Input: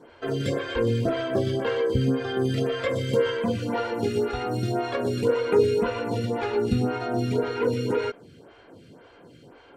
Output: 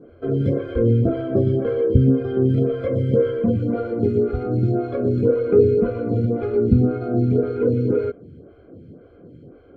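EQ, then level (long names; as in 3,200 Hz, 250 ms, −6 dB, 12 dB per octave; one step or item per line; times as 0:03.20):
moving average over 48 samples
parametric band 81 Hz +7.5 dB 0.25 octaves
+8.5 dB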